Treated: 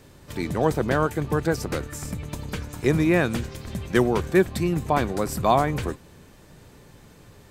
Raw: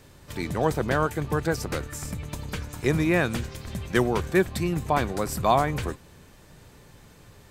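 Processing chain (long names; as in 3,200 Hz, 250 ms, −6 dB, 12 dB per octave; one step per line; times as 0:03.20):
parametric band 290 Hz +3.5 dB 2.2 octaves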